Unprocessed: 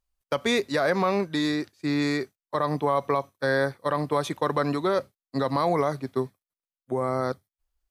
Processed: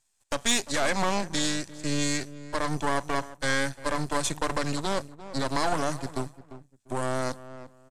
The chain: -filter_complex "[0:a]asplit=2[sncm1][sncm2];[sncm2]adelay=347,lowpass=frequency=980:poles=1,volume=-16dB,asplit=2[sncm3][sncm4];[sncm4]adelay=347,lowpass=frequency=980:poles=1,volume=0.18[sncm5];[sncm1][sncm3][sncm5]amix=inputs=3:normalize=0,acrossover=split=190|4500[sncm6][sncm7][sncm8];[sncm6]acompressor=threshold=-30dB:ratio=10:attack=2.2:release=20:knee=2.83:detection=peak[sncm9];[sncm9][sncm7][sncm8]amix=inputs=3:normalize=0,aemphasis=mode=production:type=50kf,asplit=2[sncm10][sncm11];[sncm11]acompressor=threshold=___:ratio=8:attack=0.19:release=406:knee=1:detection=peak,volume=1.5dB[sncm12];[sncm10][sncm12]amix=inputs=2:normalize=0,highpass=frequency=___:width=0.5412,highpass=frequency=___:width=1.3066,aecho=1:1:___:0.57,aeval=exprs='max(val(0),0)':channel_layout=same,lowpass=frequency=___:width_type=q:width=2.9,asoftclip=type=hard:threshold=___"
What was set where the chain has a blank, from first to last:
-39dB, 81, 81, 1.2, 7900, -12dB